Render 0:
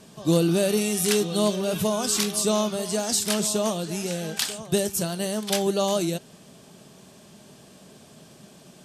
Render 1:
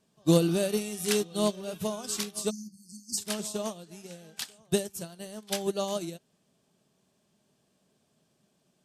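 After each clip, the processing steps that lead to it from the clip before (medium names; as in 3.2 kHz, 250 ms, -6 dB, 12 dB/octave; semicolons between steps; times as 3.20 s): spectral selection erased 2.50–3.18 s, 360–4300 Hz; upward expansion 2.5:1, over -32 dBFS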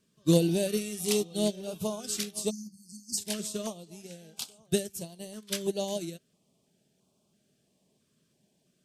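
step-sequenced notch 3 Hz 770–1800 Hz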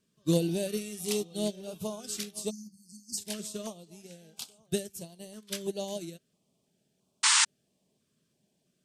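painted sound noise, 7.23–7.45 s, 840–9400 Hz -19 dBFS; trim -3.5 dB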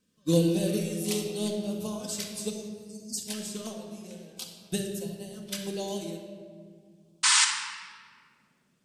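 simulated room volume 3000 m³, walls mixed, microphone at 2 m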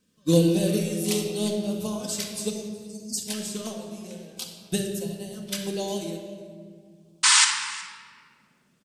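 delay 367 ms -21.5 dB; trim +4 dB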